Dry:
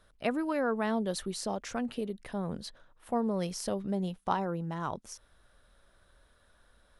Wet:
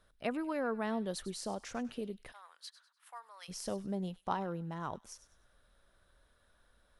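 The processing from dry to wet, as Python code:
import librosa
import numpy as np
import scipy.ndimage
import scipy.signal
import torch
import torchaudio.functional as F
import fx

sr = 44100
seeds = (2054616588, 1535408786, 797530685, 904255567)

p1 = fx.highpass(x, sr, hz=1100.0, slope=24, at=(2.31, 3.48), fade=0.02)
p2 = p1 + fx.echo_wet_highpass(p1, sr, ms=99, feedback_pct=32, hz=2000.0, wet_db=-14, dry=0)
y = p2 * librosa.db_to_amplitude(-5.0)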